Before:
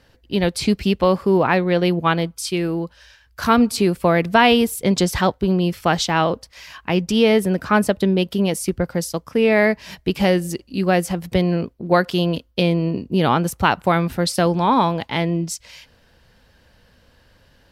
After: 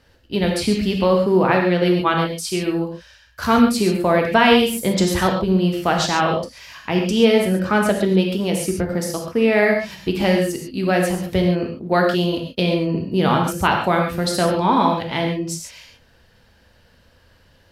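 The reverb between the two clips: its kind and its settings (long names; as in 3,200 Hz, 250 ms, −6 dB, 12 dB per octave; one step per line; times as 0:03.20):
reverb whose tail is shaped and stops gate 160 ms flat, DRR 1 dB
level −2 dB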